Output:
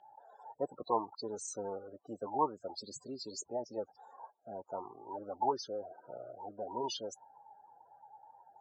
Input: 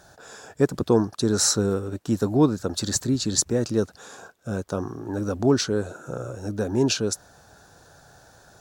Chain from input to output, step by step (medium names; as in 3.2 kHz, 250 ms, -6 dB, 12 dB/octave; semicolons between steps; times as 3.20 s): loudest bins only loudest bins 32; formant shift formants +2 st; two resonant band-passes 1.7 kHz, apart 1.8 oct; trim +4 dB